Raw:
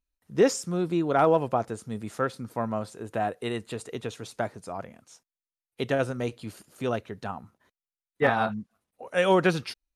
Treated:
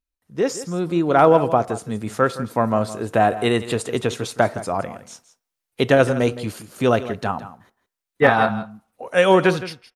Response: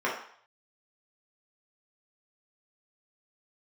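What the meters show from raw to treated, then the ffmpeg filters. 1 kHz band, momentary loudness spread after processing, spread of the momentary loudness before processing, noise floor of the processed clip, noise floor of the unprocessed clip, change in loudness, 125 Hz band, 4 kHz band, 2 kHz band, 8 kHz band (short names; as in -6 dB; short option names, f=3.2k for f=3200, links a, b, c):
+8.5 dB, 14 LU, 16 LU, -84 dBFS, under -85 dBFS, +8.0 dB, +8.0 dB, +8.0 dB, +8.5 dB, +5.5 dB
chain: -filter_complex "[0:a]dynaudnorm=f=230:g=7:m=16.5dB,aecho=1:1:165:0.188,asplit=2[a][b];[1:a]atrim=start_sample=2205,afade=t=out:st=0.38:d=0.01,atrim=end_sample=17199[c];[b][c]afir=irnorm=-1:irlink=0,volume=-29dB[d];[a][d]amix=inputs=2:normalize=0,volume=-2dB"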